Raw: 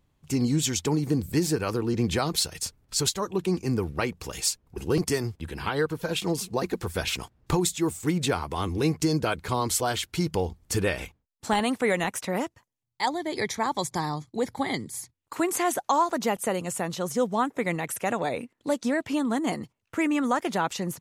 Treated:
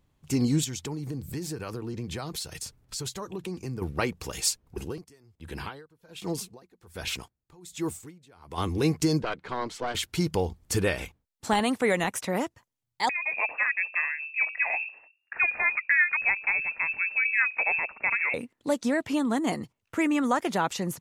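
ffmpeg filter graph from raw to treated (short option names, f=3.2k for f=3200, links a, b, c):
-filter_complex "[0:a]asettb=1/sr,asplit=3[a][b][c];[a]atrim=end=0.644[d];[b]atrim=start=0.64:end=3.82,asetpts=PTS-STARTPTS,afade=t=in:d=0.004:c=qsin,afade=t=out:st=3.176:d=0.004:c=qsin,equalizer=f=130:w=6.5:g=7,acompressor=threshold=-34dB:ratio=3:attack=3.2:release=140:knee=1:detection=peak[e];[c]atrim=start=3.816[f];[d][e]acrossfade=d=0.004:c1=hsin:c2=qsin[g];[g][f]acrossfade=d=0.004:c1=qsin:c2=hsin,asettb=1/sr,asplit=3[h][i][j];[h]atrim=end=4.804[k];[i]atrim=start=4.8:end=8.58,asetpts=PTS-STARTPTS,afade=t=in:d=0.004:c=qsin,afade=t=out:st=3.776:d=0.004:c=qsin,acompressor=threshold=-31dB:ratio=1.5:attack=3.2:release=140:knee=1:detection=peak,aeval=exprs='val(0)*pow(10,-28*(0.5-0.5*cos(2*PI*1.3*n/s))/20)':c=same[l];[j]atrim=start=8.576[m];[k][l]acrossfade=d=0.004:c1=hsin:c2=qsin[n];[n][m]acrossfade=d=0.004:c1=qsin:c2=hsin,asettb=1/sr,asplit=3[o][p][q];[o]atrim=end=9.224[r];[p]atrim=start=9.22:end=9.95,asetpts=PTS-STARTPTS,afade=t=in:d=0.004:c=qsin,afade=t=out:st=0.726:d=0.004:c=qsin,highpass=190,lowpass=3.4k,aeval=exprs='(tanh(8.91*val(0)+0.75)-tanh(0.75))/8.91':c=same[s];[q]atrim=start=9.946[t];[r][s]acrossfade=d=0.004:c1=hsin:c2=qsin[u];[u][t]acrossfade=d=0.004:c1=qsin:c2=hsin,asettb=1/sr,asplit=3[v][w][x];[v]atrim=end=13.094[y];[w]atrim=start=13.09:end=18.34,asetpts=PTS-STARTPTS,afade=t=in:d=0.004:c=qsin,afade=t=out:st=5.246:d=0.004:c=qsin,lowshelf=f=150:g=8.5,bandreject=f=50:t=h:w=6,bandreject=f=100:t=h:w=6,bandreject=f=150:t=h:w=6,bandreject=f=200:t=h:w=6,bandreject=f=250:t=h:w=6,bandreject=f=300:t=h:w=6,bandreject=f=350:t=h:w=6,bandreject=f=400:t=h:w=6,bandreject=f=450:t=h:w=6,bandreject=f=500:t=h:w=6,lowpass=f=2.4k:t=q:w=0.5098,lowpass=f=2.4k:t=q:w=0.6013,lowpass=f=2.4k:t=q:w=0.9,lowpass=f=2.4k:t=q:w=2.563,afreqshift=-2800[z];[x]atrim=start=18.336[aa];[y][z]acrossfade=d=0.004:c1=hsin:c2=qsin[ab];[ab][aa]acrossfade=d=0.004:c1=qsin:c2=hsin"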